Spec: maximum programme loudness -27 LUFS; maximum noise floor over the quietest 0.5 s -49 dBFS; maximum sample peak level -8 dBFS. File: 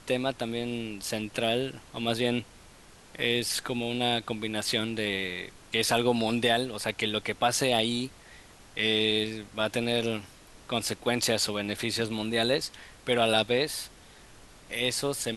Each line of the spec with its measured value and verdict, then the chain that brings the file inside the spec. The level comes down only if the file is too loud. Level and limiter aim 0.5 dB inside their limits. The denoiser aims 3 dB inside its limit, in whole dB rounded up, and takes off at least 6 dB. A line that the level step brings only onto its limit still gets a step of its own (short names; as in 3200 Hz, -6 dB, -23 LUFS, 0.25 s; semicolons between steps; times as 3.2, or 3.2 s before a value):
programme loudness -28.5 LUFS: OK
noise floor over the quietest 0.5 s -53 dBFS: OK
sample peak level -10.5 dBFS: OK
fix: none